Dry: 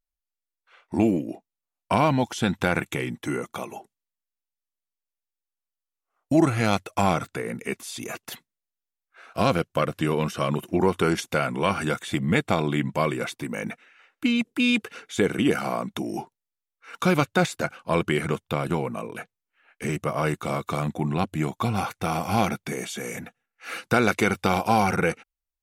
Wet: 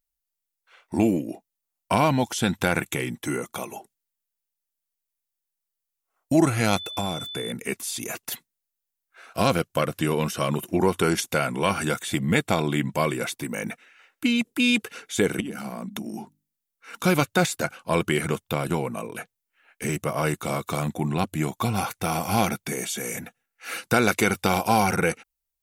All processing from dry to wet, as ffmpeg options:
ffmpeg -i in.wav -filter_complex "[0:a]asettb=1/sr,asplit=3[link_01][link_02][link_03];[link_01]atrim=end=6.764[link_04];[link_02]atrim=start=6.76:end=7.52,asetpts=PTS-STARTPTS,afade=type=in:duration=0.004:curve=qsin,afade=type=out:start_time=0.756:duration=0.004:curve=qsin,acrossover=split=740|5900[link_05][link_06][link_07];[link_05]acompressor=threshold=-27dB:ratio=4[link_08];[link_06]acompressor=threshold=-38dB:ratio=4[link_09];[link_07]acompressor=threshold=-49dB:ratio=4[link_10];[link_08][link_09][link_10]amix=inputs=3:normalize=0,aeval=exprs='val(0)+0.0158*sin(2*PI*3500*n/s)':channel_layout=same[link_11];[link_03]atrim=start=7.516[link_12];[link_04][link_11]acrossfade=duration=0.004:curve1=hsin:curve2=qsin[link_13];[link_13][link_12]acrossfade=duration=0.004:curve1=qsin:curve2=hsin,asettb=1/sr,asplit=3[link_14][link_15][link_16];[link_14]atrim=end=15.404[link_17];[link_15]atrim=start=15.4:end=17.04,asetpts=PTS-STARTPTS,afade=type=in:duration=0.004:curve=qsin,afade=type=out:start_time=1.636:duration=0.004:curve=qsin,equalizer=frequency=210:width=2.4:gain=13,acompressor=threshold=-29dB:ratio=8:attack=3.2:release=140:knee=1:detection=peak,bandreject=frequency=50:width_type=h:width=6,bandreject=frequency=100:width_type=h:width=6,bandreject=frequency=150:width_type=h:width=6,bandreject=frequency=200:width_type=h:width=6,bandreject=frequency=250:width_type=h:width=6,bandreject=frequency=300:width_type=h:width=6[link_18];[link_16]atrim=start=17.036[link_19];[link_17][link_18]acrossfade=duration=0.004:curve1=hsin:curve2=qsin[link_20];[link_20][link_19]acrossfade=duration=0.004:curve1=qsin:curve2=hsin,highshelf=frequency=6500:gain=11,bandreject=frequency=1200:width=22" out.wav

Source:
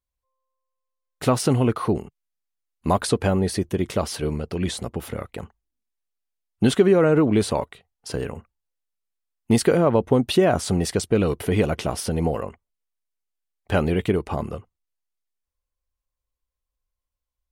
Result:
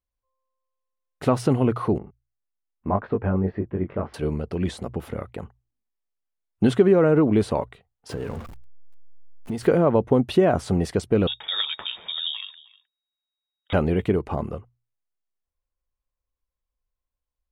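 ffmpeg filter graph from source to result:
ffmpeg -i in.wav -filter_complex "[0:a]asettb=1/sr,asplit=3[link_01][link_02][link_03];[link_01]atrim=end=1.984[link_04];[link_02]atrim=start=1.98:end=4.14,asetpts=PTS-STARTPTS,afade=type=in:duration=0.004:curve=qsin,afade=type=out:start_time=2.156:duration=0.004:curve=qsin,lowpass=frequency=2100:width=0.5412,lowpass=frequency=2100:width=1.3066,flanger=delay=19:depth=3:speed=1.8[link_05];[link_03]atrim=start=4.136[link_06];[link_04][link_05]acrossfade=duration=0.004:curve1=hsin:curve2=qsin[link_07];[link_07][link_06]acrossfade=duration=0.004:curve1=qsin:curve2=hsin,asettb=1/sr,asplit=3[link_08][link_09][link_10];[link_08]atrim=end=8.094[link_11];[link_09]atrim=start=8.09:end=9.68,asetpts=PTS-STARTPTS,afade=type=in:duration=0.004:curve=qsin,afade=type=out:start_time=1.586:duration=0.004:curve=qsin,aeval=exprs='val(0)+0.5*0.0251*sgn(val(0))':channel_layout=same,acompressor=threshold=-25dB:ratio=5:attack=3.2:release=140:knee=1:detection=peak[link_12];[link_10]atrim=start=9.676[link_13];[link_11][link_12]acrossfade=duration=0.004:curve1=hsin:curve2=qsin[link_14];[link_14][link_13]acrossfade=duration=0.004:curve1=qsin:curve2=hsin,asettb=1/sr,asplit=3[link_15][link_16][link_17];[link_15]atrim=end=11.274[link_18];[link_16]atrim=start=11.27:end=13.73,asetpts=PTS-STARTPTS,afade=type=in:duration=0.004:curve=qsin,afade=type=out:start_time=2.456:duration=0.004:curve=qsin,lowpass=frequency=3200:width_type=q:width=0.5098,lowpass=frequency=3200:width_type=q:width=0.6013,lowpass=frequency=3200:width_type=q:width=0.9,lowpass=frequency=3200:width_type=q:width=2.563,afreqshift=-3800,aecho=1:1:311:0.0944,atrim=end_sample=108486[link_19];[link_17]atrim=start=13.726[link_20];[link_18][link_19]acrossfade=duration=0.004:curve1=hsin:curve2=qsin[link_21];[link_21][link_20]acrossfade=duration=0.004:curve1=qsin:curve2=hsin,highshelf=frequency=2900:gain=-12,bandreject=frequency=60:width_type=h:width=6,bandreject=frequency=120:width_type=h:width=6" out.wav

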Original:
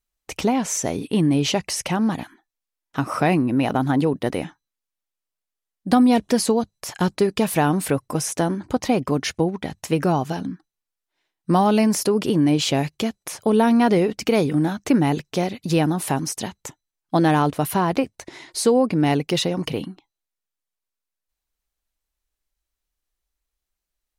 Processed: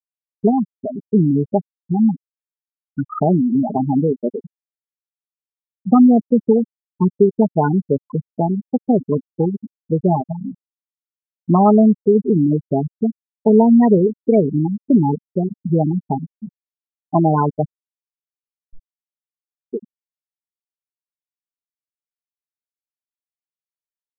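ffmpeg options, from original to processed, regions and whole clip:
ffmpeg -i in.wav -filter_complex "[0:a]asettb=1/sr,asplit=3[link_01][link_02][link_03];[link_01]atrim=end=17.724[link_04];[link_02]atrim=start=17.72:end=19.73,asetpts=PTS-STARTPTS,afade=type=in:duration=0.004:curve=qsin,afade=type=out:start_time=2.006:duration=0.004:curve=qsin,aeval=exprs='if(lt(val(0),0),0.251*val(0),val(0))':channel_layout=same,acompressor=threshold=-31dB:ratio=4:attack=3.2:release=140:knee=1:detection=peak,aecho=1:1:980:0.188,atrim=end_sample=88641[link_05];[link_03]atrim=start=19.726[link_06];[link_04][link_05]acrossfade=duration=0.004:curve1=hsin:curve2=qsin[link_07];[link_07][link_06]acrossfade=duration=0.004:curve1=qsin:curve2=hsin,equalizer=frequency=4800:width_type=o:width=0.97:gain=-12.5,aecho=1:1:4.8:0.36,afftfilt=real='re*gte(hypot(re,im),0.398)':imag='im*gte(hypot(re,im),0.398)':win_size=1024:overlap=0.75,volume=4dB" out.wav

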